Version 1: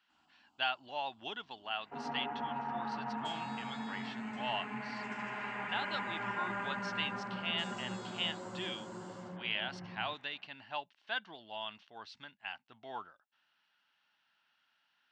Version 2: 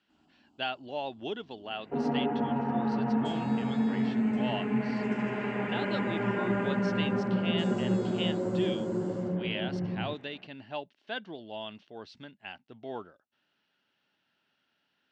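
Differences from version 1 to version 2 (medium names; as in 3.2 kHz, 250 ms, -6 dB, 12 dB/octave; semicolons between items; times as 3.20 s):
second sound +3.5 dB; master: add resonant low shelf 660 Hz +11 dB, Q 1.5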